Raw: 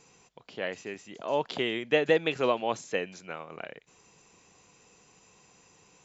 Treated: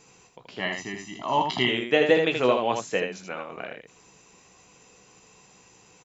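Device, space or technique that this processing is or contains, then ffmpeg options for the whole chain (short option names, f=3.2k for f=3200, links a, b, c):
slapback doubling: -filter_complex "[0:a]asettb=1/sr,asplit=3[a][b][c];[a]atrim=end=0.594[d];[b]atrim=start=0.59:end=1.69,asetpts=PTS-STARTPTS,afade=t=in:d=0.004:c=qsin,afade=t=out:st=1.096:d=0.004:c=qsin,aecho=1:1:1:0.94,atrim=end_sample=48510[e];[c]atrim=start=1.686[f];[d][e]acrossfade=d=0.004:c1=hsin:c2=qsin[g];[g][f]acrossfade=d=0.004:c1=qsin:c2=hsin,asplit=3[h][i][j];[i]adelay=16,volume=-7dB[k];[j]adelay=79,volume=-5dB[l];[h][k][l]amix=inputs=3:normalize=0,volume=3dB"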